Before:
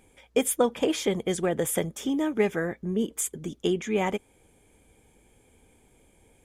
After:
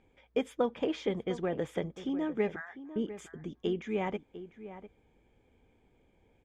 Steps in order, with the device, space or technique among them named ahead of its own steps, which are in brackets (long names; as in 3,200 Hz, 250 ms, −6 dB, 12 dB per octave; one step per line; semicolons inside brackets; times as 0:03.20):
0:02.56–0:02.96: elliptic high-pass filter 750 Hz, stop band 40 dB
shout across a valley (high-frequency loss of the air 200 metres; slap from a distant wall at 120 metres, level −13 dB)
level −6 dB